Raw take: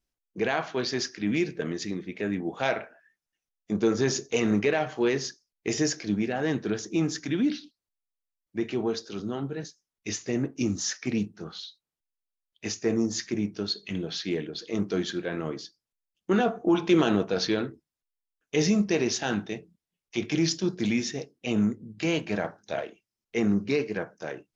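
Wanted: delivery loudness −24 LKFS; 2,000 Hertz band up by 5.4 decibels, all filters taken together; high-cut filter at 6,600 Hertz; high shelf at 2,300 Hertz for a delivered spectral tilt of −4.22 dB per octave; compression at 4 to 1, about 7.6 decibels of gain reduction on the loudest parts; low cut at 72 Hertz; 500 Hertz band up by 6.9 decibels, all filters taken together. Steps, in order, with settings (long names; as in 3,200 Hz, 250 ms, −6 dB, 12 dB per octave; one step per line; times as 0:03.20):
high-pass filter 72 Hz
low-pass filter 6,600 Hz
parametric band 500 Hz +8.5 dB
parametric band 2,000 Hz +4 dB
high-shelf EQ 2,300 Hz +4.5 dB
downward compressor 4 to 1, threshold −22 dBFS
level +4 dB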